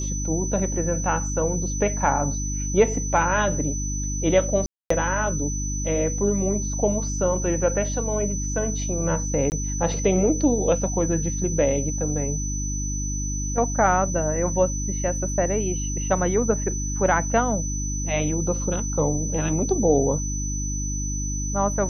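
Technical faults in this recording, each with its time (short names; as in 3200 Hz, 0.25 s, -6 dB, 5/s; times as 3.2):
hum 50 Hz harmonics 6 -28 dBFS
tone 6000 Hz -30 dBFS
4.66–4.9 gap 0.244 s
9.5–9.52 gap 19 ms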